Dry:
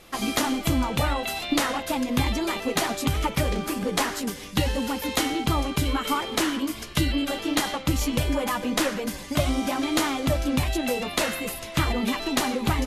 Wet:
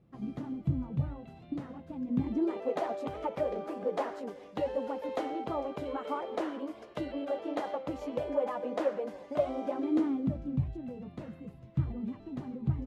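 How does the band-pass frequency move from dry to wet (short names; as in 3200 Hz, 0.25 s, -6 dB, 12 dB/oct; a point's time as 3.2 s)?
band-pass, Q 2.4
1.99 s 140 Hz
2.68 s 570 Hz
9.59 s 570 Hz
10.59 s 130 Hz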